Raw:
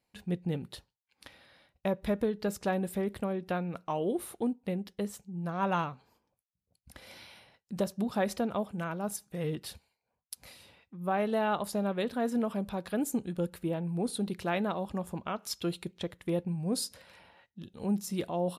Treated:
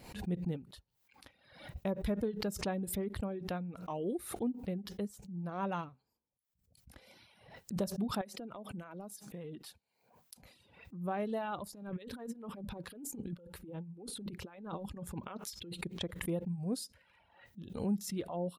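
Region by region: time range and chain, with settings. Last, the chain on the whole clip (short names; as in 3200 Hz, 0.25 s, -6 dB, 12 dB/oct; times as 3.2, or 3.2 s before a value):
8.21–10.43 HPF 160 Hz + compressor, threshold -35 dBFS
11.74–15.78 notch 670 Hz, Q 5.6 + negative-ratio compressor -38 dBFS, ratio -0.5
whole clip: reverb removal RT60 1.1 s; low shelf 500 Hz +7 dB; backwards sustainer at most 82 dB/s; gain -9 dB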